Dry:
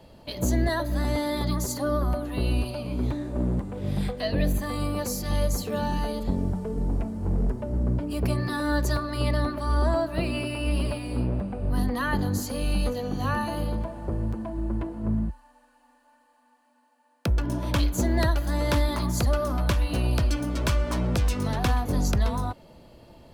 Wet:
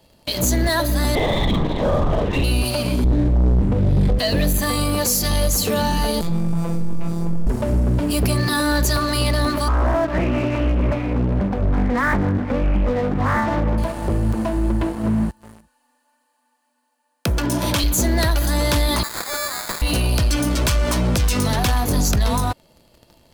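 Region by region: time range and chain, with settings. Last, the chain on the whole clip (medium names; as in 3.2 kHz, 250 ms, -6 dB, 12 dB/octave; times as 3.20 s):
1.15–2.44 s: LPC vocoder at 8 kHz whisper + peaking EQ 1.4 kHz -12 dB 0.2 oct + doubling 47 ms -3.5 dB
3.04–4.19 s: tilt EQ -4.5 dB/octave + hum notches 50/100/150/200/250/300/350/400 Hz
6.21–7.47 s: robot voice 168 Hz + hysteresis with a dead band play -38.5 dBFS + flutter echo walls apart 3.2 m, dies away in 0.22 s
9.68–13.78 s: Chebyshev low-pass 2.2 kHz, order 5 + loudspeaker Doppler distortion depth 0.42 ms
14.95–17.84 s: high-pass 140 Hz 6 dB/octave + delay 366 ms -17.5 dB
19.03–19.82 s: high-pass 990 Hz + treble shelf 8.3 kHz -11 dB + sample-rate reducer 2.9 kHz
whole clip: treble shelf 3 kHz +11 dB; waveshaping leveller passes 3; peak limiter -12 dBFS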